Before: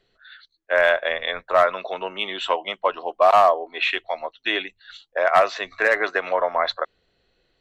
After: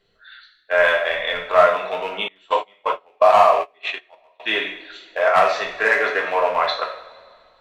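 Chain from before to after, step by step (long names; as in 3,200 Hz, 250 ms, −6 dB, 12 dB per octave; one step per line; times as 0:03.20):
loose part that buzzes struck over −40 dBFS, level −23 dBFS
coupled-rooms reverb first 0.57 s, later 2.2 s, from −18 dB, DRR −1.5 dB
0:02.28–0:04.40: noise gate −18 dBFS, range −27 dB
level −1 dB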